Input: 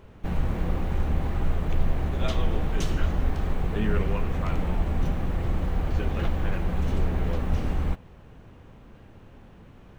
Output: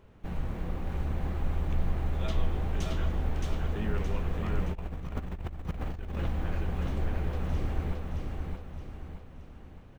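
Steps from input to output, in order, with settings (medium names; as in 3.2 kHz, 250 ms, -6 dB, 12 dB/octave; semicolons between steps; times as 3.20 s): feedback delay 620 ms, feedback 45%, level -3 dB; 4.72–6.17 s: compressor with a negative ratio -26 dBFS, ratio -0.5; trim -7.5 dB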